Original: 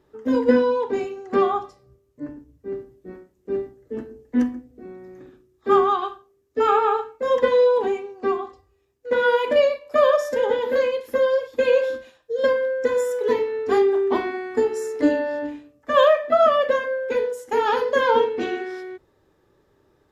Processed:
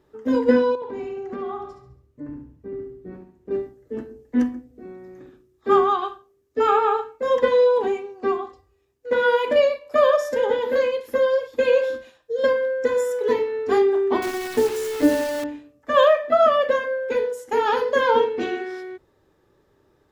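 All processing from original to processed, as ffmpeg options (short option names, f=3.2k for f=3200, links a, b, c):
-filter_complex "[0:a]asettb=1/sr,asplit=3[a][b][c];[a]atrim=end=0.754[d];[b]atrim=start=0.75:end=3.51,asetpts=PTS-STARTPTS,afade=t=in:d=0.004:c=qsin,afade=t=out:st=2.756:d=0.004:c=qsin,bass=f=250:g=6,treble=f=4k:g=-7,acompressor=threshold=-32dB:ratio=3:attack=3.2:release=140:knee=1:detection=peak,aecho=1:1:69|138|207|276|345:0.473|0.203|0.0875|0.0376|0.0162,atrim=end_sample=121716[e];[c]atrim=start=3.506[f];[d][e]acrossfade=d=0.004:c1=hsin:c2=qsin[g];[g][f]acrossfade=d=0.004:c1=qsin:c2=hsin,asettb=1/sr,asplit=3[h][i][j];[h]atrim=end=14.224[k];[i]atrim=start=14.22:end=15.44,asetpts=PTS-STARTPTS,afade=t=in:d=0.004:c=qsin,afade=t=out:st=1.216:d=0.004:c=qsin,lowshelf=f=140:g=7,acrusher=bits=6:dc=4:mix=0:aa=0.000001[l];[j]atrim=start=15.436[m];[k][l]acrossfade=d=0.004:c1=hsin:c2=qsin[n];[n][m]acrossfade=d=0.004:c1=qsin:c2=hsin"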